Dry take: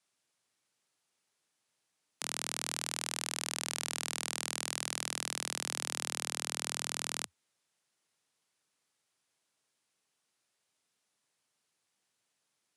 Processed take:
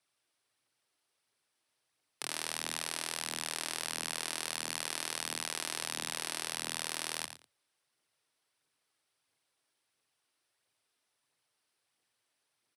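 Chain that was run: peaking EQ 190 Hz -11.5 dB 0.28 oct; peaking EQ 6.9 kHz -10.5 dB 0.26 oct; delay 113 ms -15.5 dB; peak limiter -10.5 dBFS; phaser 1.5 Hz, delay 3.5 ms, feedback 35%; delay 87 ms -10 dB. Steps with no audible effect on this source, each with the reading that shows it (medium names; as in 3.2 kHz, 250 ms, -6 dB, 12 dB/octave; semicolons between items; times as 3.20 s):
peak limiter -10.5 dBFS: peak at its input -16.5 dBFS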